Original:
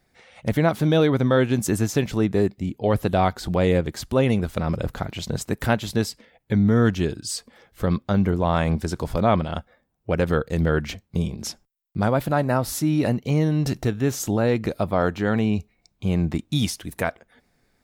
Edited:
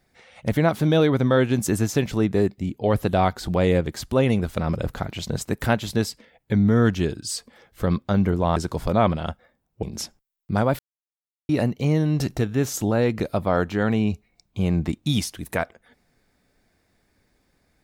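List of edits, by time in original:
0:08.56–0:08.84: remove
0:10.11–0:11.29: remove
0:12.25–0:12.95: silence

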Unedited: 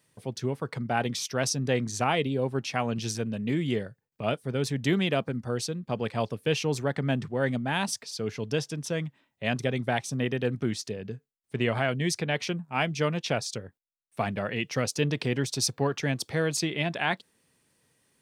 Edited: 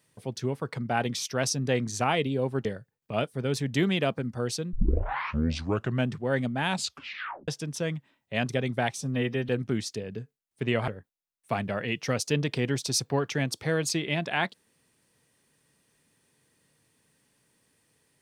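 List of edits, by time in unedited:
0:02.65–0:03.75: remove
0:05.83: tape start 1.35 s
0:07.79: tape stop 0.79 s
0:10.08–0:10.42: time-stretch 1.5×
0:11.81–0:13.56: remove

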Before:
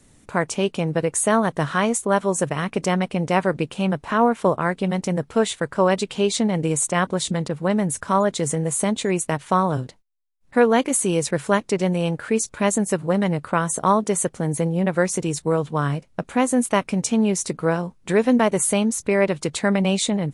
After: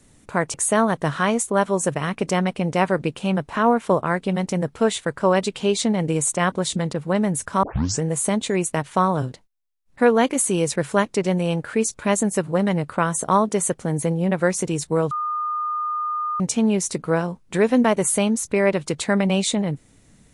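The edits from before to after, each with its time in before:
0:00.54–0:01.09: remove
0:08.18: tape start 0.39 s
0:15.66–0:16.95: beep over 1,220 Hz −22 dBFS

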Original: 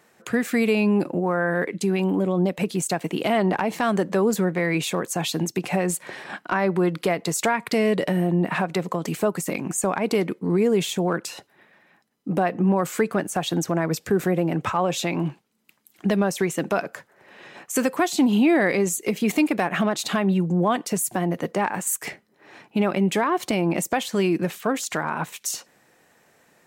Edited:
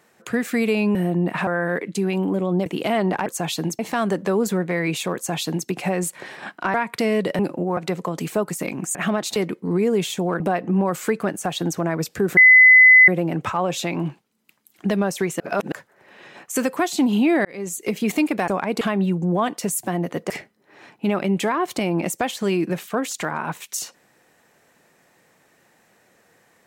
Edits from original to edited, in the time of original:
0:00.95–0:01.33: swap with 0:08.12–0:08.64
0:02.52–0:03.06: remove
0:05.02–0:05.55: duplicate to 0:03.66
0:06.61–0:07.47: remove
0:09.82–0:10.15: swap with 0:19.68–0:20.09
0:11.19–0:12.31: remove
0:14.28: insert tone 2,020 Hz −6.5 dBFS 0.71 s
0:16.60–0:16.92: reverse
0:18.65–0:19.08: fade in
0:21.58–0:22.02: remove

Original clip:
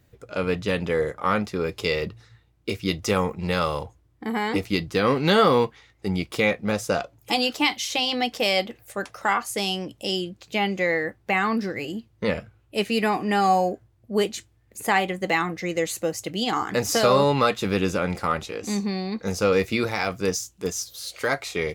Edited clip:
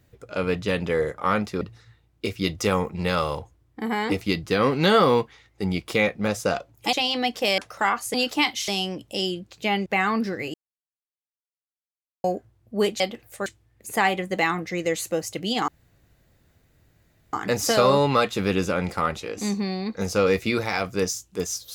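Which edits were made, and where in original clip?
0:01.61–0:02.05: remove
0:07.37–0:07.91: move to 0:09.58
0:08.56–0:09.02: move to 0:14.37
0:10.76–0:11.23: remove
0:11.91–0:13.61: silence
0:16.59: splice in room tone 1.65 s

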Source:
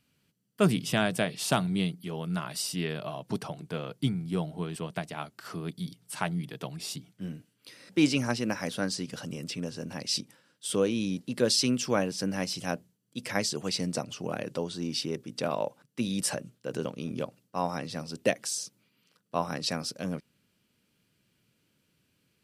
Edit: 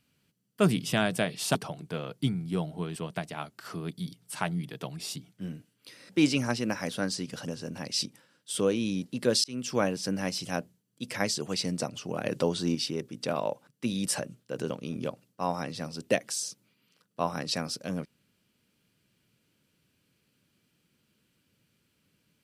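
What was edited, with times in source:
0:01.55–0:03.35: remove
0:09.28–0:09.63: remove
0:11.59–0:11.92: fade in
0:14.40–0:14.90: clip gain +5.5 dB

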